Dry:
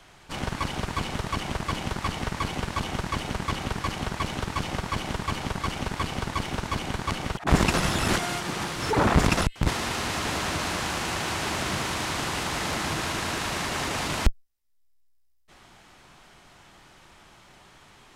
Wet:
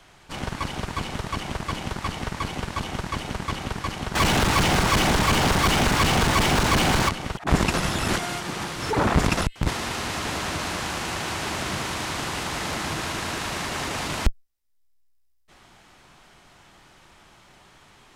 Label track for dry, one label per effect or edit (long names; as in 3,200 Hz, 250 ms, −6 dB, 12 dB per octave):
4.150000	7.090000	leveller curve on the samples passes 5